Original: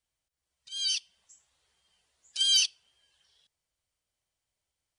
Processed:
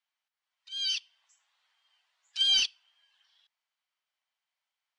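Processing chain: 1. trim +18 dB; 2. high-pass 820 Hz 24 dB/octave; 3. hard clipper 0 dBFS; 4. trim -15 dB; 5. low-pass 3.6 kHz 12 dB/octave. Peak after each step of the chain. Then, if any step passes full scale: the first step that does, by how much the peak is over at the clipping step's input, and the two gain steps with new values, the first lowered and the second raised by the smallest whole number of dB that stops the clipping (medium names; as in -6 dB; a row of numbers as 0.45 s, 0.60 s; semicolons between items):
+3.0 dBFS, +4.5 dBFS, 0.0 dBFS, -15.0 dBFS, -16.5 dBFS; step 1, 4.5 dB; step 1 +13 dB, step 4 -10 dB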